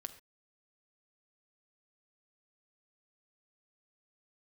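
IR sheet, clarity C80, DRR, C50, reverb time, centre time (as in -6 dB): 15.5 dB, 8.5 dB, 13.0 dB, no single decay rate, 7 ms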